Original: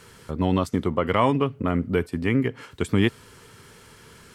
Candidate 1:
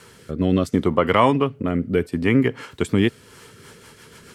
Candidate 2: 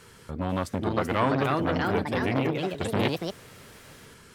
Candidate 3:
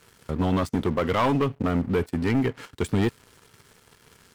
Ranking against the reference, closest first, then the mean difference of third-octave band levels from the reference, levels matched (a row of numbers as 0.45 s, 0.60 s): 1, 3, 2; 2.0 dB, 4.5 dB, 7.0 dB